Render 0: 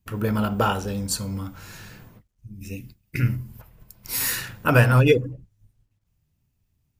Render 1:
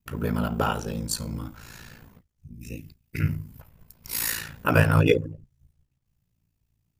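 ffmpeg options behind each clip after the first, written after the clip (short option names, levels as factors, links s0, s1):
-af "aeval=exprs='val(0)*sin(2*PI*28*n/s)':c=same"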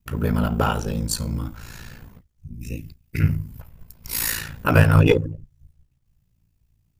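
-filter_complex "[0:a]lowshelf=f=88:g=9,asplit=2[s0][s1];[s1]aeval=exprs='clip(val(0),-1,0.0891)':c=same,volume=0.631[s2];[s0][s2]amix=inputs=2:normalize=0,volume=0.891"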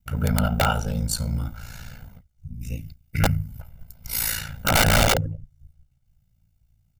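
-af "aeval=exprs='(mod(3.55*val(0)+1,2)-1)/3.55':c=same,aecho=1:1:1.4:0.68,volume=0.75"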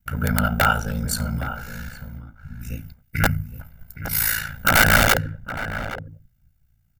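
-filter_complex "[0:a]equalizer=f=250:t=o:w=0.67:g=3,equalizer=f=1600:t=o:w=0.67:g=11,equalizer=f=16000:t=o:w=0.67:g=8,asplit=2[s0][s1];[s1]adelay=816.3,volume=0.282,highshelf=f=4000:g=-18.4[s2];[s0][s2]amix=inputs=2:normalize=0,volume=0.891"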